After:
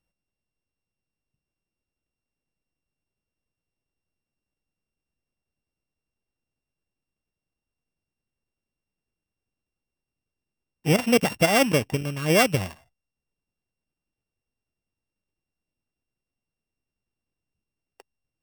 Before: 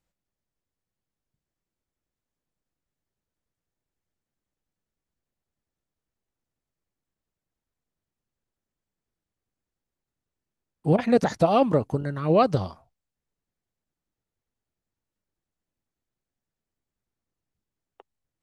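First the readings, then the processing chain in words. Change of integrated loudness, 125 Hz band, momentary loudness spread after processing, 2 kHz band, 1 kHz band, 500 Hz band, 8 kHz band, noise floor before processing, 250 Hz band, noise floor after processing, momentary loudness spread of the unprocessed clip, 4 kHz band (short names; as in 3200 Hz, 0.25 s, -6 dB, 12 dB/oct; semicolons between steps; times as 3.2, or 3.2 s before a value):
+1.0 dB, 0.0 dB, 9 LU, +12.0 dB, -2.5 dB, -1.0 dB, n/a, under -85 dBFS, 0.0 dB, under -85 dBFS, 9 LU, +11.5 dB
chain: sample sorter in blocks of 16 samples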